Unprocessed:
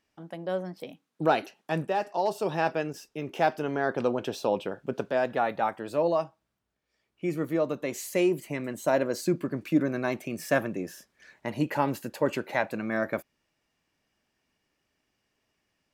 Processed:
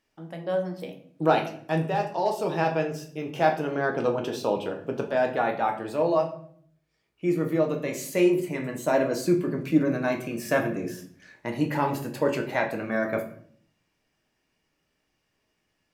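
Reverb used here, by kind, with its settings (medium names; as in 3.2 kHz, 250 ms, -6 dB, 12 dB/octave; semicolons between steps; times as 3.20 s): simulated room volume 80 m³, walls mixed, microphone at 0.55 m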